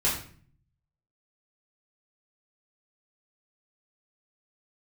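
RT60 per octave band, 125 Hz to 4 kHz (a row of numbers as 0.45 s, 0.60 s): 1.0 s, 0.75 s, 0.50 s, 0.45 s, 0.45 s, 0.40 s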